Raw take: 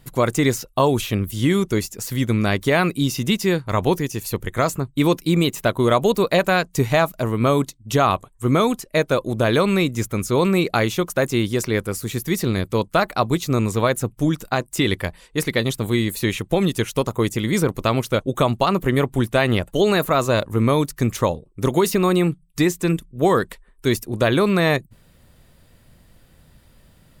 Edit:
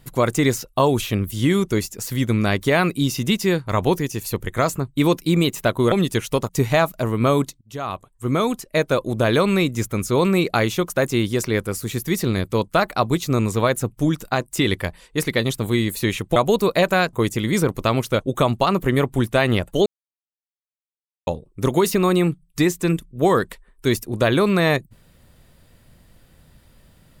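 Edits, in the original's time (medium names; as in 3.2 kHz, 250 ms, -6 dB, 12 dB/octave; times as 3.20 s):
5.92–6.69 s: swap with 16.56–17.13 s
7.81–9.36 s: fade in equal-power, from -23 dB
19.86–21.27 s: mute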